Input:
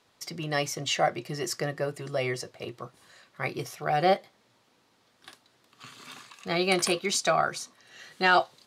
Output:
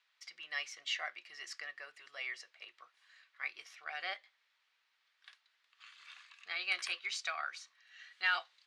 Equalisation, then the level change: ladder band-pass 2.5 kHz, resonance 25%; +4.0 dB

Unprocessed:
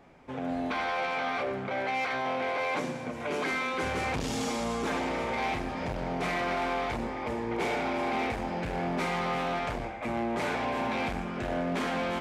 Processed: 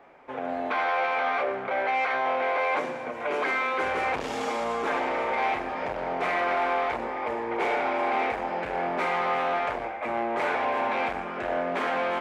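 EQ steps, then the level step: three-band isolator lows -17 dB, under 370 Hz, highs -13 dB, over 2.7 kHz; +6.0 dB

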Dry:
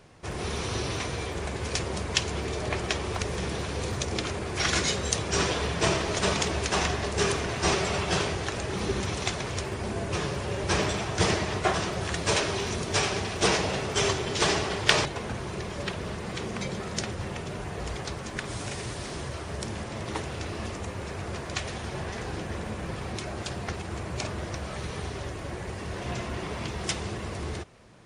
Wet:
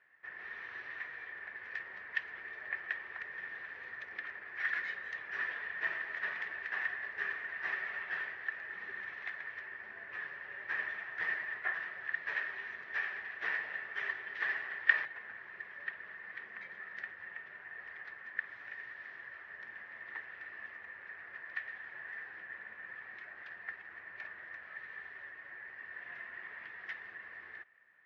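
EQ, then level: band-pass filter 1.8 kHz, Q 15; distance through air 260 m; +8.0 dB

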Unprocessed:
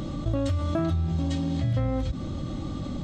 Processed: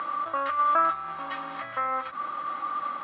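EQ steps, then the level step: resonant high-pass 1.2 kHz, resonance Q 4.2; low-pass 2.5 kHz 24 dB/octave; distance through air 100 m; +7.5 dB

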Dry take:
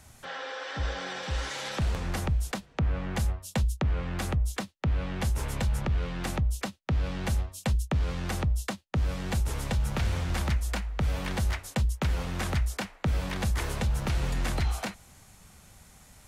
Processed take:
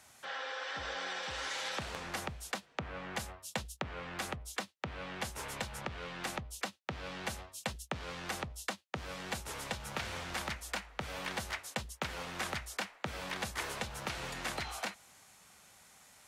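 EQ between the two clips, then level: high-pass 720 Hz 6 dB/octave; treble shelf 7.5 kHz -4.5 dB; -1.0 dB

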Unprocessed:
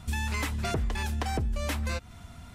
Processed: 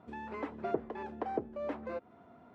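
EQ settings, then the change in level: ladder band-pass 480 Hz, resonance 30%; +11.0 dB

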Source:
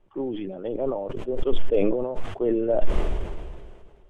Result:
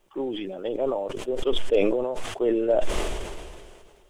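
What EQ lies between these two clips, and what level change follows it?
tone controls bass -8 dB, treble +6 dB; treble shelf 2.7 kHz +10.5 dB; +1.5 dB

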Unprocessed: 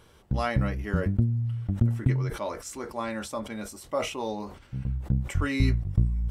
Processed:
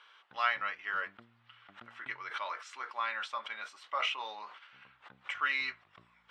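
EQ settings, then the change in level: Chebyshev band-pass 1.2–3.3 kHz, order 2; +4.0 dB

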